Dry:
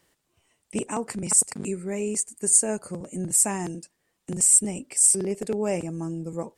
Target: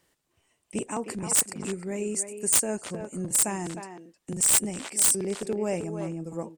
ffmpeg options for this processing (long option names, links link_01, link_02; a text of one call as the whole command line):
ffmpeg -i in.wav -filter_complex "[0:a]aeval=exprs='(mod(3.16*val(0)+1,2)-1)/3.16':channel_layout=same,asplit=2[link_01][link_02];[link_02]adelay=310,highpass=300,lowpass=3400,asoftclip=type=hard:threshold=-19.5dB,volume=-7dB[link_03];[link_01][link_03]amix=inputs=2:normalize=0,volume=-2.5dB" out.wav